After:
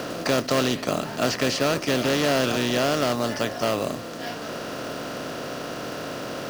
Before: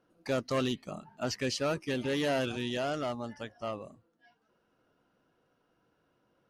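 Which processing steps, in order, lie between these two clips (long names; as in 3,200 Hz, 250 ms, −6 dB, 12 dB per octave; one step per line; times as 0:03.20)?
compressor on every frequency bin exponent 0.4
floating-point word with a short mantissa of 2 bits
multiband upward and downward compressor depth 40%
level +5 dB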